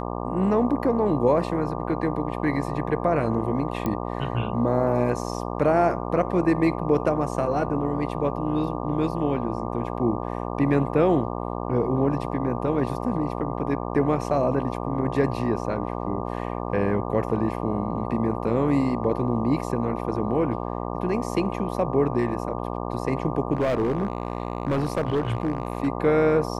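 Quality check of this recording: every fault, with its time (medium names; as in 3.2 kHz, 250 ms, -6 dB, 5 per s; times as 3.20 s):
buzz 60 Hz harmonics 20 -30 dBFS
3.86 s: pop -14 dBFS
23.55–25.88 s: clipped -19 dBFS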